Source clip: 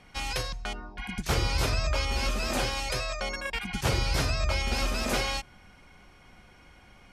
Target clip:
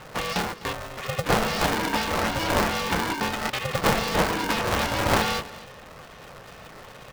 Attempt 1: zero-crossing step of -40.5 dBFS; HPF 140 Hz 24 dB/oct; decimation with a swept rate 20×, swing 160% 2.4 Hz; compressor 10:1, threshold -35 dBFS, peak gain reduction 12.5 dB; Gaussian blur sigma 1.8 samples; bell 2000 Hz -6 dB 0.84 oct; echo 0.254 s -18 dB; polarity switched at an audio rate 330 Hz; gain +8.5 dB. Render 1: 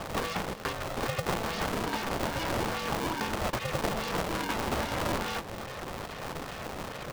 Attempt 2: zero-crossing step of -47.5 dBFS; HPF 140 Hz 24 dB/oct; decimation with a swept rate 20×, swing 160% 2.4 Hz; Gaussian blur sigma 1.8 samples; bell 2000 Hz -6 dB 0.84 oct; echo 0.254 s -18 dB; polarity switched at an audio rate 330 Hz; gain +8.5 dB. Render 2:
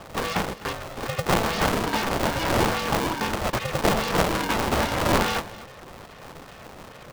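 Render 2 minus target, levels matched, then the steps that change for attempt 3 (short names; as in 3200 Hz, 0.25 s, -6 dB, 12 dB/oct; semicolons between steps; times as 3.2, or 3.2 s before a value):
decimation with a swept rate: distortion +6 dB
change: decimation with a swept rate 8×, swing 160% 2.4 Hz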